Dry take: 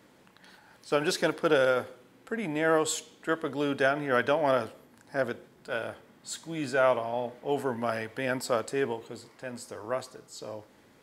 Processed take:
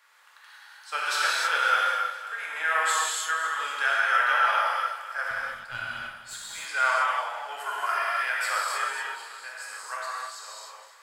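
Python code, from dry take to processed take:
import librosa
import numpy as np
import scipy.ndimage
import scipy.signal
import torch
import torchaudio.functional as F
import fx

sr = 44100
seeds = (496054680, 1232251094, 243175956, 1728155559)

y = fx.ladder_highpass(x, sr, hz=1000.0, resonance_pct=35)
y = fx.tube_stage(y, sr, drive_db=32.0, bias=0.7, at=(5.29, 6.33), fade=0.02)
y = fx.comb(y, sr, ms=2.9, depth=0.87, at=(7.6, 8.19))
y = fx.echo_feedback(y, sr, ms=254, feedback_pct=51, wet_db=-13.5)
y = fx.rev_gated(y, sr, seeds[0], gate_ms=340, shape='flat', drr_db=-6.0)
y = F.gain(torch.from_numpy(y), 6.0).numpy()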